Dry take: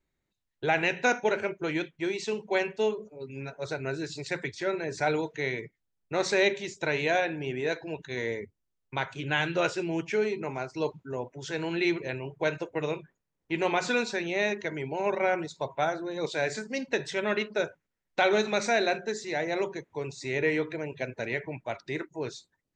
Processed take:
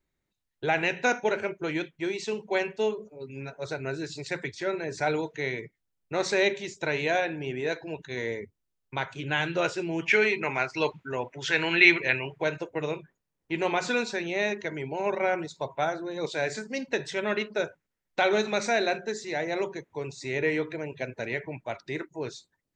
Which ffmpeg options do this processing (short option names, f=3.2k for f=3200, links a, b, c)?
-filter_complex "[0:a]asplit=3[a][b][c];[a]afade=t=out:st=10.01:d=0.02[d];[b]equalizer=f=2.2k:t=o:w=2:g=14.5,afade=t=in:st=10.01:d=0.02,afade=t=out:st=12.41:d=0.02[e];[c]afade=t=in:st=12.41:d=0.02[f];[d][e][f]amix=inputs=3:normalize=0"